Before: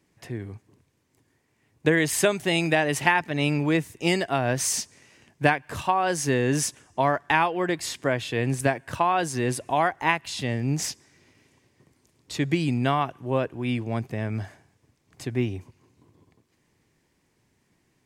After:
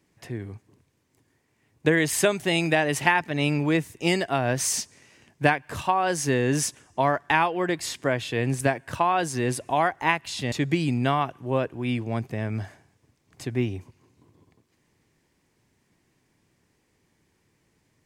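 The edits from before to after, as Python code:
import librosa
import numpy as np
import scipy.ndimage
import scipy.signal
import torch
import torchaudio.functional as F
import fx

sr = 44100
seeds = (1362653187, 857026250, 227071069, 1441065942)

y = fx.edit(x, sr, fx.cut(start_s=10.52, length_s=1.8), tone=tone)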